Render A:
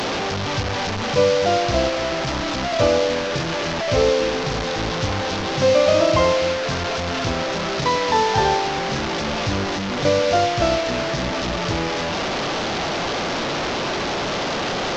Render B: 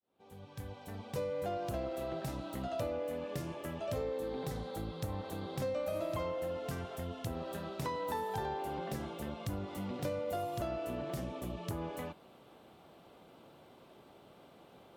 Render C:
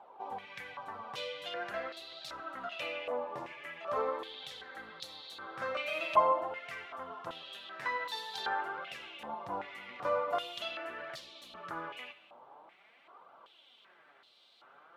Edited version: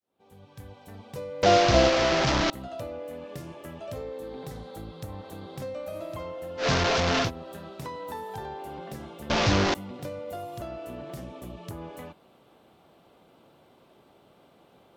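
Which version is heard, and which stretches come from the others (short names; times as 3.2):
B
1.43–2.5 from A
6.62–7.26 from A, crossfade 0.10 s
9.3–9.74 from A
not used: C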